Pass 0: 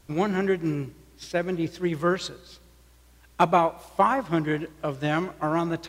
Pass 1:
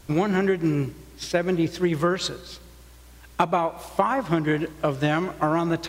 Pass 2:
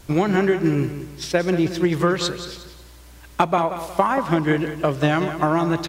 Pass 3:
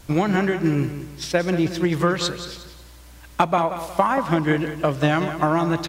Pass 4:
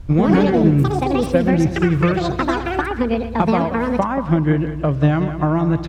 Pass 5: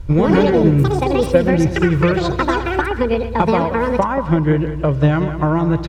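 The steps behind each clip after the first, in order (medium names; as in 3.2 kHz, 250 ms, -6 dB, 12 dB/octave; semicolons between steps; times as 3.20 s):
compression 12:1, threshold -25 dBFS, peak gain reduction 12 dB; trim +7.5 dB
feedback delay 180 ms, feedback 36%, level -11 dB; trim +3 dB
peaking EQ 390 Hz -5.5 dB 0.24 oct
RIAA curve playback; ever faster or slower copies 124 ms, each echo +7 st, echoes 2; trim -2.5 dB
comb 2.1 ms, depth 38%; trim +2 dB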